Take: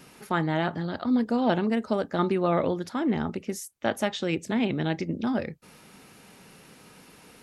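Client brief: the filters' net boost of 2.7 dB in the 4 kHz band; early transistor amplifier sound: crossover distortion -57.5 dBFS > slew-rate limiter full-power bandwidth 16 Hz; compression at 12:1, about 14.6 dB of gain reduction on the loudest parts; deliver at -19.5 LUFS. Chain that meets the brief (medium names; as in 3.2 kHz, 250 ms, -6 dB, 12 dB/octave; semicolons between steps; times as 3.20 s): peaking EQ 4 kHz +3.5 dB; compression 12:1, threshold -34 dBFS; crossover distortion -57.5 dBFS; slew-rate limiter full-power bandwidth 16 Hz; trim +21 dB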